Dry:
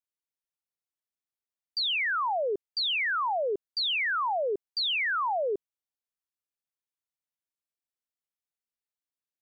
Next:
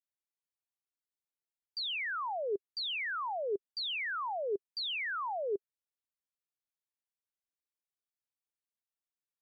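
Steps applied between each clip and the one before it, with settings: dynamic EQ 400 Hz, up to +6 dB, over -44 dBFS, Q 4; gain -8 dB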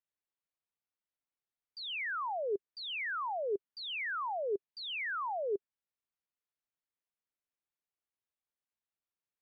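LPF 3000 Hz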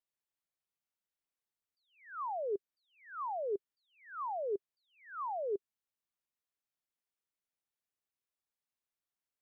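attack slew limiter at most 130 dB/s; gain -1.5 dB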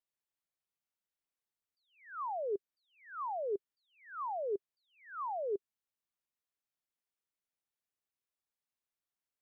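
nothing audible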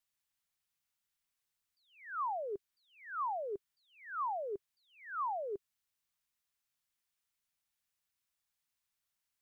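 bell 420 Hz -12 dB 1.9 oct; gain +7 dB

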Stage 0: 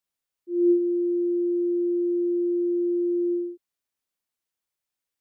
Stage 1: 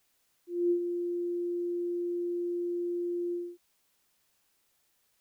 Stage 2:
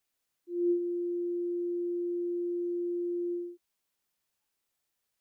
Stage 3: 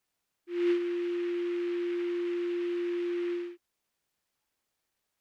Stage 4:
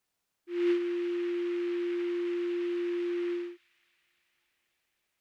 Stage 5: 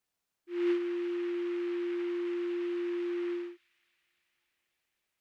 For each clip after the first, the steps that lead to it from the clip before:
added noise white -64 dBFS; gain -8.5 dB
spectral noise reduction 10 dB
noise-modulated delay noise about 1900 Hz, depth 0.057 ms; gain +1 dB
thin delay 0.276 s, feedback 72%, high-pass 2100 Hz, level -19.5 dB
dynamic EQ 840 Hz, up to +5 dB, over -46 dBFS, Q 0.72; gain -3.5 dB

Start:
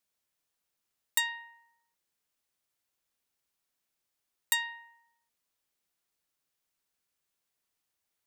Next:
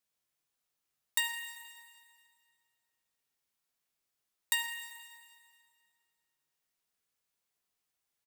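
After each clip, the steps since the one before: doubler 20 ms -12 dB; reverb RT60 2.1 s, pre-delay 3 ms, DRR 5 dB; gain -3 dB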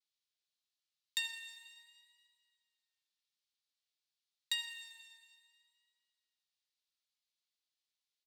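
vibrato 0.54 Hz 36 cents; band-pass 4000 Hz, Q 2.2; gain +2 dB

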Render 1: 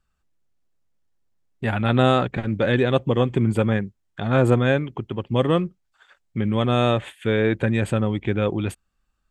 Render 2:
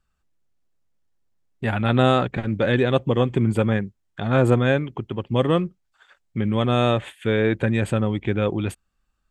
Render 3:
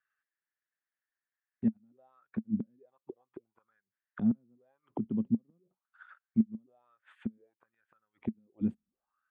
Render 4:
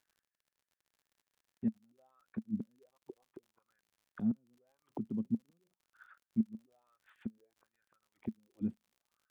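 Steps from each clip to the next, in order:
nothing audible
flipped gate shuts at -12 dBFS, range -42 dB; auto-wah 220–1800 Hz, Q 6.9, down, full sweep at -33 dBFS; gain +5.5 dB
crackle 61/s -53 dBFS; gain -5 dB

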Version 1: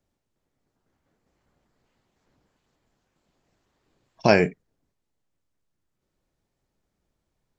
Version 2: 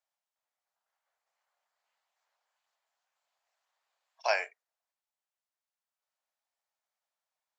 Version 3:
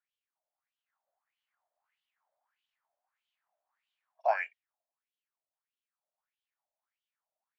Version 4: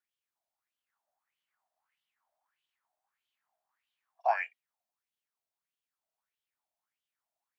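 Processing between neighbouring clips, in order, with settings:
steep high-pass 650 Hz 36 dB/oct; gain -7 dB
wah 1.6 Hz 590–3200 Hz, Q 5.1; gain +7 dB
frequency shift +36 Hz

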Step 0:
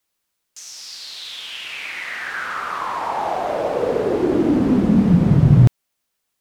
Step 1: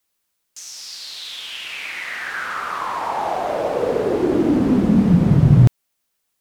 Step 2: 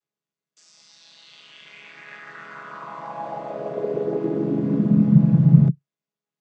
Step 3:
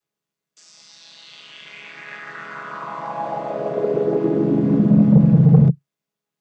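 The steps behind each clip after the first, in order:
high shelf 7600 Hz +3.5 dB
chord vocoder minor triad, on C#3; gain -2 dB
soft clip -11 dBFS, distortion -12 dB; gain +5.5 dB

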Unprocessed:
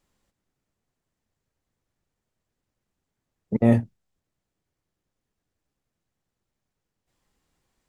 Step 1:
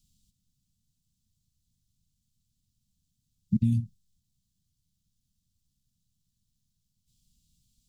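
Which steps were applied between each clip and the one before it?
compressor 10:1, threshold -22 dBFS, peak gain reduction 11 dB; inverse Chebyshev band-stop 430–1700 Hz, stop band 50 dB; gain +6.5 dB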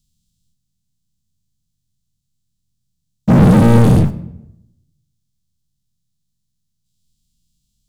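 spectral dilation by 0.48 s; sample leveller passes 5; reverb RT60 0.85 s, pre-delay 6 ms, DRR 11 dB; gain +4.5 dB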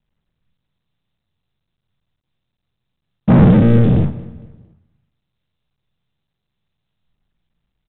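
rotary speaker horn 0.85 Hz, later 5.5 Hz, at 5.57; feedback echo 0.228 s, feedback 42%, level -21 dB; G.726 40 kbps 8000 Hz

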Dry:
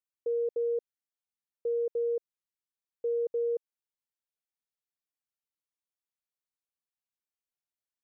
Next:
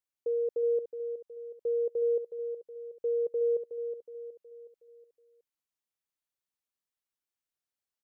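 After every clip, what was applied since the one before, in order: feedback echo 0.368 s, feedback 46%, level -9 dB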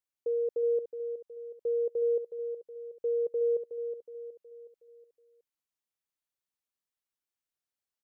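nothing audible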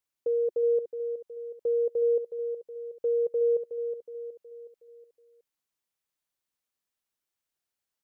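dynamic EQ 370 Hz, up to -7 dB, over -50 dBFS, Q 6.3; gain +4 dB

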